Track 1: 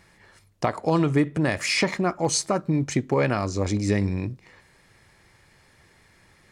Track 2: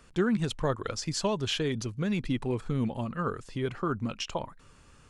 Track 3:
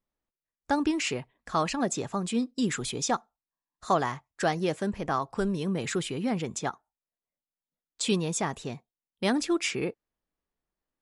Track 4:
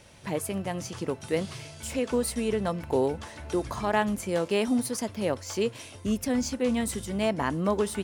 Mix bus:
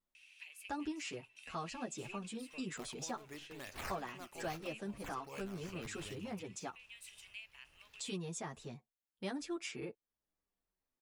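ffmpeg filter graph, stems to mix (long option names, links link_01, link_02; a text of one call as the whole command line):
ffmpeg -i stem1.wav -i stem2.wav -i stem3.wav -i stem4.wav -filter_complex "[0:a]aemphasis=mode=production:type=riaa,acrusher=samples=9:mix=1:aa=0.000001:lfo=1:lforange=9:lforate=2.4,asubboost=boost=6.5:cutoff=100,adelay=2150,volume=-17dB[link_01];[1:a]highpass=330,dynaudnorm=framelen=500:gausssize=9:maxgain=10dB,aeval=exprs='(tanh(15.8*val(0)+0.55)-tanh(0.55))/15.8':channel_layout=same,adelay=1900,volume=-17.5dB[link_02];[2:a]asplit=2[link_03][link_04];[link_04]adelay=8.3,afreqshift=-0.74[link_05];[link_03][link_05]amix=inputs=2:normalize=1,volume=-1.5dB,asplit=2[link_06][link_07];[3:a]acompressor=threshold=-29dB:ratio=6,highpass=frequency=2600:width_type=q:width=9.9,adelay=150,volume=-14dB[link_08];[link_07]apad=whole_len=381986[link_09];[link_01][link_09]sidechaincompress=threshold=-35dB:ratio=8:attack=25:release=140[link_10];[link_10][link_02][link_06][link_08]amix=inputs=4:normalize=0,acompressor=threshold=-58dB:ratio=1.5" out.wav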